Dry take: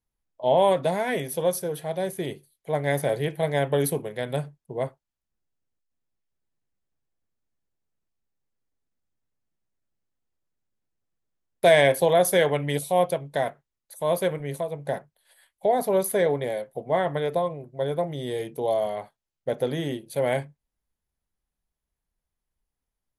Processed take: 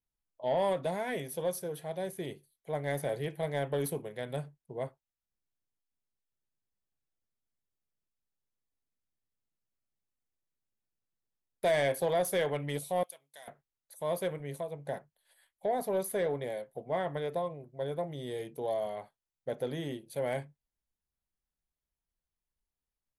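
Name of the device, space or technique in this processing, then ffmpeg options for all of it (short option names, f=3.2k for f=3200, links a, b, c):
saturation between pre-emphasis and de-emphasis: -filter_complex "[0:a]highshelf=f=3.2k:g=10.5,asoftclip=type=tanh:threshold=-12.5dB,highshelf=f=3.2k:g=-10.5,asettb=1/sr,asplit=3[a][b][c];[a]atrim=end=13.034[d];[b]atrim=start=13.03:end=13.48,asetpts=PTS-STARTPTS,afade=t=in:d=0.004:c=qsin,afade=t=out:st=0.446:d=0.004:c=qsin,aderivative[e];[c]atrim=start=13.476[f];[d][e]acrossfade=d=0.004:c1=hsin:c2=qsin[g];[g][f]acrossfade=d=0.004:c1=qsin:c2=hsin,volume=-8dB"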